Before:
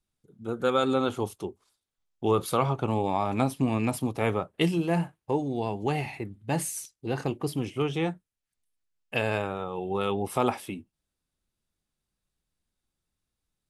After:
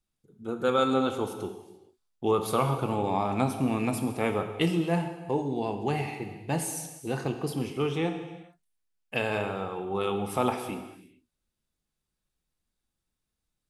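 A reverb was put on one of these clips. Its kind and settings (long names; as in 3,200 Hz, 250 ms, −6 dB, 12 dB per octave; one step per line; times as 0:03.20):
reverb whose tail is shaped and stops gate 470 ms falling, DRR 6 dB
level −1.5 dB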